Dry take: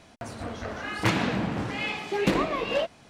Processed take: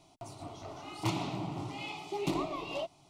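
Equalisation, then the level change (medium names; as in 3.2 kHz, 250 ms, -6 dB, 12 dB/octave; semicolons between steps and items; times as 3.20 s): static phaser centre 330 Hz, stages 8; -5.5 dB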